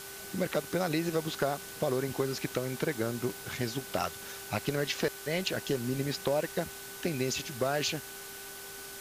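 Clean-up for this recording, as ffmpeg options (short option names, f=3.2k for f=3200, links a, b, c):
-af "bandreject=f=394.8:t=h:w=4,bandreject=f=789.6:t=h:w=4,bandreject=f=1.1844k:t=h:w=4,bandreject=f=1.5792k:t=h:w=4,bandreject=f=1.5k:w=30,afwtdn=0.0063"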